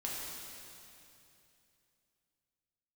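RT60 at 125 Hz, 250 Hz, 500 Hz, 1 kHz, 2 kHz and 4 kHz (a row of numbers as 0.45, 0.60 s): 3.3, 3.0, 2.9, 2.7, 2.7, 2.7 s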